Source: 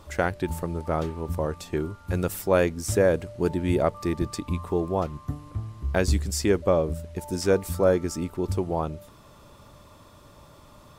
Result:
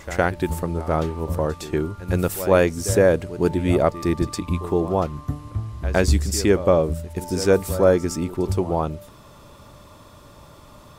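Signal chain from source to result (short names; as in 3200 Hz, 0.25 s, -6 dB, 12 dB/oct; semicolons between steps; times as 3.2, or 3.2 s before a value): reverse echo 0.111 s -14.5 dB; gain +4.5 dB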